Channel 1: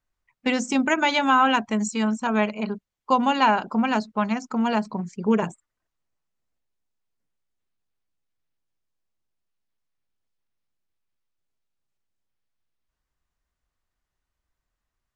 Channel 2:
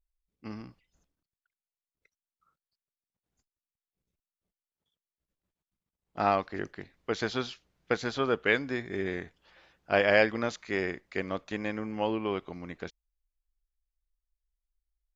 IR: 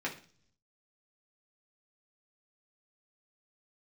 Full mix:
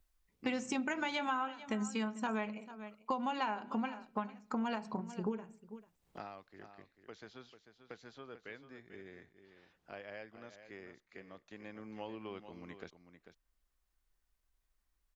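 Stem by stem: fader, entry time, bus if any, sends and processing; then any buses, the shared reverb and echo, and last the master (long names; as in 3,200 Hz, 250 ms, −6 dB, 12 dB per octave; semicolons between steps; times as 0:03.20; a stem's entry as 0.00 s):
−7.0 dB, 0.00 s, send −11.5 dB, echo send −19.5 dB, every ending faded ahead of time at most 200 dB per second
0:06.06 −9 dB → 0:06.28 −21.5 dB → 0:11.40 −21.5 dB → 0:11.91 −15 dB, 0.00 s, no send, echo send −11 dB, multiband upward and downward compressor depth 70%; automatic ducking −16 dB, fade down 1.30 s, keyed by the first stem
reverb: on, RT60 0.45 s, pre-delay 3 ms
echo: single-tap delay 443 ms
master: downward compressor 6 to 1, threshold −33 dBFS, peak gain reduction 13.5 dB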